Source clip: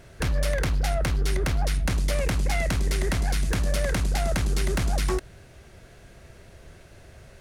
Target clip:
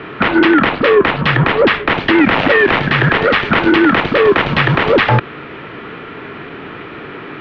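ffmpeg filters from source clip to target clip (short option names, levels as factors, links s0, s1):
-filter_complex "[0:a]asplit=3[s0][s1][s2];[s0]afade=t=out:st=2.27:d=0.02[s3];[s1]acrusher=bits=3:mode=log:mix=0:aa=0.000001,afade=t=in:st=2.27:d=0.02,afade=t=out:st=2.78:d=0.02[s4];[s2]afade=t=in:st=2.78:d=0.02[s5];[s3][s4][s5]amix=inputs=3:normalize=0,highpass=f=450:t=q:w=0.5412,highpass=f=450:t=q:w=1.307,lowpass=f=3300:t=q:w=0.5176,lowpass=f=3300:t=q:w=0.7071,lowpass=f=3300:t=q:w=1.932,afreqshift=-250,alimiter=level_in=22.4:limit=0.891:release=50:level=0:latency=1,volume=0.891"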